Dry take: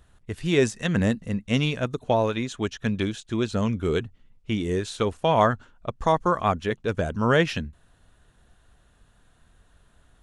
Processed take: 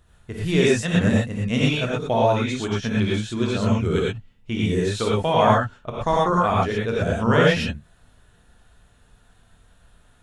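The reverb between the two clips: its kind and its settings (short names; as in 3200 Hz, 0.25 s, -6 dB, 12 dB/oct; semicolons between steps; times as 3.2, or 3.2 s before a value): non-linear reverb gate 0.14 s rising, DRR -5 dB; gain -2 dB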